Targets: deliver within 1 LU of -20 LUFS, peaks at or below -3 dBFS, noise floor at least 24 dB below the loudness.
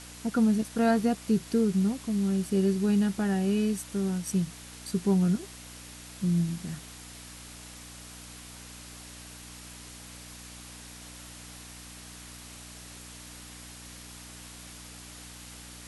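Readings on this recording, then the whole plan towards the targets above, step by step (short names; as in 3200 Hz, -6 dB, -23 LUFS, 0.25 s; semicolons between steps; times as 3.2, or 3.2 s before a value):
hum 60 Hz; harmonics up to 300 Hz; hum level -48 dBFS; noise floor -46 dBFS; noise floor target -52 dBFS; loudness -27.5 LUFS; peak -13.0 dBFS; loudness target -20.0 LUFS
-> de-hum 60 Hz, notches 5; denoiser 6 dB, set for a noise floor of -46 dBFS; gain +7.5 dB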